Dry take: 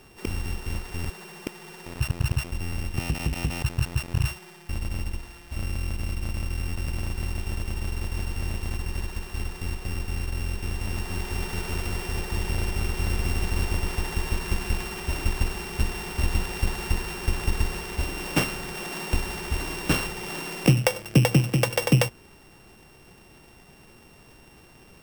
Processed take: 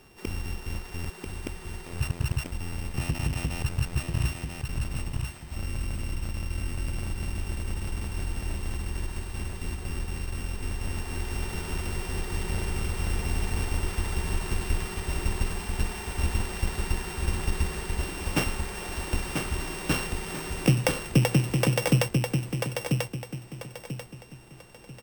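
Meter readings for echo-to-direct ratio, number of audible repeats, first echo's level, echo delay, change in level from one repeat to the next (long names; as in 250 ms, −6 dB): −4.0 dB, 3, −4.5 dB, 990 ms, −10.0 dB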